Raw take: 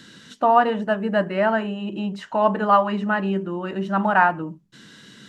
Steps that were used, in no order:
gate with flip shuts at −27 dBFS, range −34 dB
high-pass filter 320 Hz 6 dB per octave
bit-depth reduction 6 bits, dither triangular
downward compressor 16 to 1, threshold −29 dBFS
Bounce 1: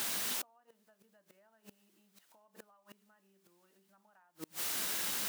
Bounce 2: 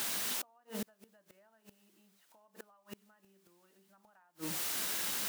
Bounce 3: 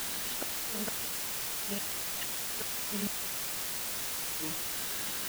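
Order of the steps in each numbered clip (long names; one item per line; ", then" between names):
bit-depth reduction, then downward compressor, then gate with flip, then high-pass filter
bit-depth reduction, then high-pass filter, then downward compressor, then gate with flip
high-pass filter, then downward compressor, then gate with flip, then bit-depth reduction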